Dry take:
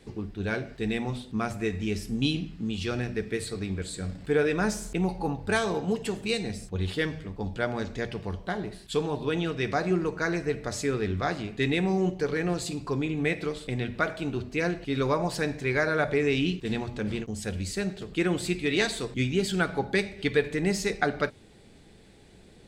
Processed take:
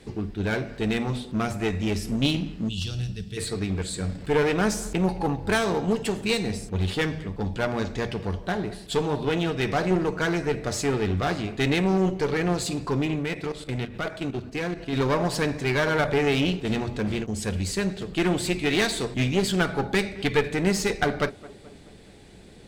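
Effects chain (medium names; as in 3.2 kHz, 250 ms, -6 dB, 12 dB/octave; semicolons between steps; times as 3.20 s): 2.69–3.37 s: time-frequency box 200–2600 Hz -18 dB; one-sided clip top -30 dBFS; 13.16–14.93 s: level held to a coarse grid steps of 11 dB; tape echo 213 ms, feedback 63%, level -18.5 dB, low-pass 1.3 kHz; trim +5 dB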